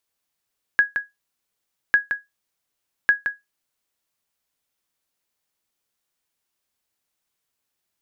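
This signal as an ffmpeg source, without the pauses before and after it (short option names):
-f lavfi -i "aevalsrc='0.447*(sin(2*PI*1660*mod(t,1.15))*exp(-6.91*mod(t,1.15)/0.18)+0.398*sin(2*PI*1660*max(mod(t,1.15)-0.17,0))*exp(-6.91*max(mod(t,1.15)-0.17,0)/0.18))':d=3.45:s=44100"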